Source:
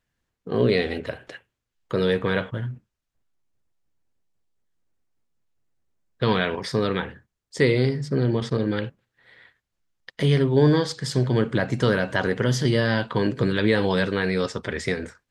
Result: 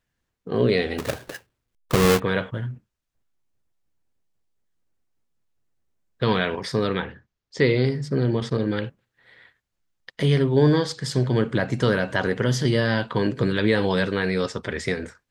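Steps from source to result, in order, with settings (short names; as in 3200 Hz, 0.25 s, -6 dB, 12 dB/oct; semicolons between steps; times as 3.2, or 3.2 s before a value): 0.98–2.2 half-waves squared off; 6.94–7.86 LPF 6200 Hz 24 dB/oct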